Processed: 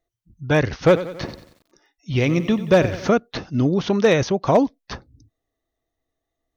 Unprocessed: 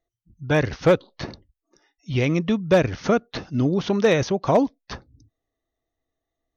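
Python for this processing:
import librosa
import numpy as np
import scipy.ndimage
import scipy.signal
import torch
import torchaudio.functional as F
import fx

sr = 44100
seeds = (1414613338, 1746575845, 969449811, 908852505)

y = fx.echo_crushed(x, sr, ms=92, feedback_pct=55, bits=8, wet_db=-13.5, at=(0.84, 3.09))
y = F.gain(torch.from_numpy(y), 2.0).numpy()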